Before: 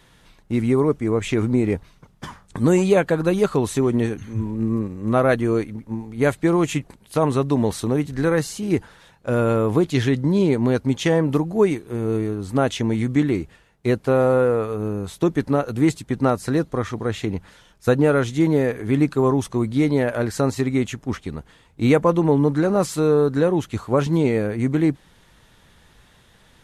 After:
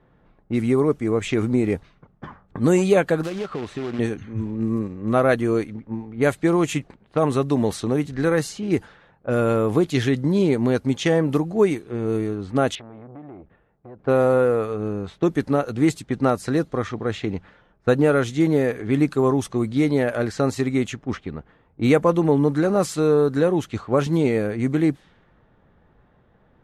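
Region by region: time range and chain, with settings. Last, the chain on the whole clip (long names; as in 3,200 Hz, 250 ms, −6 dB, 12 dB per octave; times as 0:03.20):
0:03.23–0:03.99: low-shelf EQ 170 Hz −4.5 dB + downward compressor 12 to 1, threshold −23 dBFS + log-companded quantiser 4 bits
0:12.75–0:13.99: Chebyshev low-pass filter 3,900 Hz, order 4 + downward compressor 12 to 1, threshold −32 dBFS + saturating transformer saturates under 750 Hz
whole clip: notch filter 960 Hz, Q 12; low-pass that shuts in the quiet parts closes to 940 Hz, open at −16.5 dBFS; low-shelf EQ 100 Hz −6 dB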